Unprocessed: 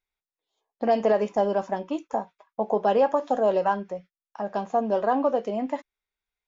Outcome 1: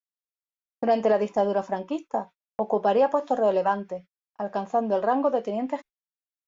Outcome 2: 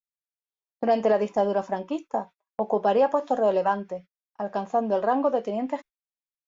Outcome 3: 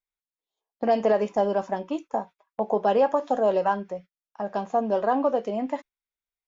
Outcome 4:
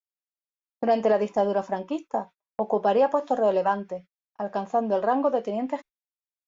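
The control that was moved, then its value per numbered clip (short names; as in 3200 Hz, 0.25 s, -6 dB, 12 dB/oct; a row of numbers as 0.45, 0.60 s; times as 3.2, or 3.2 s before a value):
gate, range: -59, -26, -9, -38 dB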